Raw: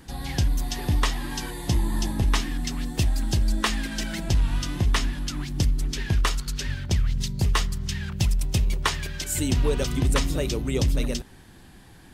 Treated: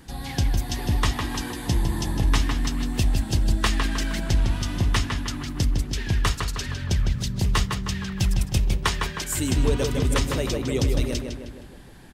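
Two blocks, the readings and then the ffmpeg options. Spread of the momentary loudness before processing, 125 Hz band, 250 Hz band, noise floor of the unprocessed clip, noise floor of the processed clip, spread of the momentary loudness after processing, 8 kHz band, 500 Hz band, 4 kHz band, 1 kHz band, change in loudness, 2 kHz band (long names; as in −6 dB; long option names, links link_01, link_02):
7 LU, +1.5 dB, +2.0 dB, −49 dBFS, −41 dBFS, 6 LU, +0.5 dB, +2.0 dB, +1.0 dB, +1.5 dB, +1.0 dB, +1.5 dB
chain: -filter_complex "[0:a]asplit=2[link_01][link_02];[link_02]adelay=156,lowpass=frequency=3300:poles=1,volume=-4dB,asplit=2[link_03][link_04];[link_04]adelay=156,lowpass=frequency=3300:poles=1,volume=0.54,asplit=2[link_05][link_06];[link_06]adelay=156,lowpass=frequency=3300:poles=1,volume=0.54,asplit=2[link_07][link_08];[link_08]adelay=156,lowpass=frequency=3300:poles=1,volume=0.54,asplit=2[link_09][link_10];[link_10]adelay=156,lowpass=frequency=3300:poles=1,volume=0.54,asplit=2[link_11][link_12];[link_12]adelay=156,lowpass=frequency=3300:poles=1,volume=0.54,asplit=2[link_13][link_14];[link_14]adelay=156,lowpass=frequency=3300:poles=1,volume=0.54[link_15];[link_01][link_03][link_05][link_07][link_09][link_11][link_13][link_15]amix=inputs=8:normalize=0"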